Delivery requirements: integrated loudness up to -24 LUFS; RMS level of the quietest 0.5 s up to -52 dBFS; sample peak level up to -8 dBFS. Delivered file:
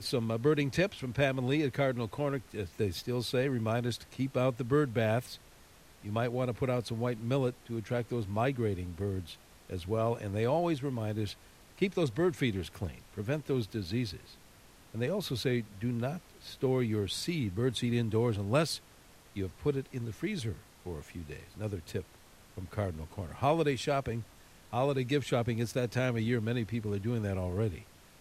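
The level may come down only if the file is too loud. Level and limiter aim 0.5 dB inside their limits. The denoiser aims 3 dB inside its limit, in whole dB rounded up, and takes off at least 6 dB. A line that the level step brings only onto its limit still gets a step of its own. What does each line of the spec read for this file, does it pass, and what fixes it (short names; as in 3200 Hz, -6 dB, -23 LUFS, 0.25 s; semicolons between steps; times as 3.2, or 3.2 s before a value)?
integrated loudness -33.0 LUFS: OK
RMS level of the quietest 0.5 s -57 dBFS: OK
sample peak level -15.0 dBFS: OK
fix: none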